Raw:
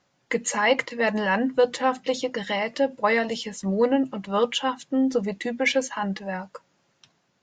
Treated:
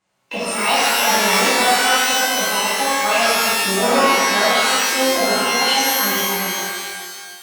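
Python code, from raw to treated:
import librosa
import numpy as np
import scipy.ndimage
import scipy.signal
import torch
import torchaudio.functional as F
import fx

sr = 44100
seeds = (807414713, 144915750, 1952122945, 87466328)

p1 = fx.formant_shift(x, sr, semitones=5)
p2 = fx.quant_dither(p1, sr, seeds[0], bits=6, dither='none')
p3 = p1 + (p2 * librosa.db_to_amplitude(-8.5))
p4 = fx.rev_shimmer(p3, sr, seeds[1], rt60_s=1.7, semitones=12, shimmer_db=-2, drr_db=-10.5)
y = p4 * librosa.db_to_amplitude(-9.0)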